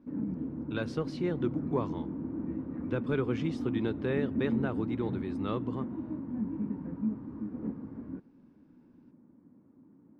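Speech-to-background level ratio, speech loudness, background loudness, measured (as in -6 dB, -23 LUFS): 1.5 dB, -35.0 LUFS, -36.5 LUFS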